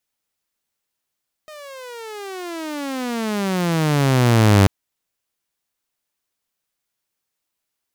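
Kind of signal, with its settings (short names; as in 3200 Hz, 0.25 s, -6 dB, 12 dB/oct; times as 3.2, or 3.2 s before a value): gliding synth tone saw, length 3.19 s, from 623 Hz, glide -32.5 st, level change +27 dB, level -6.5 dB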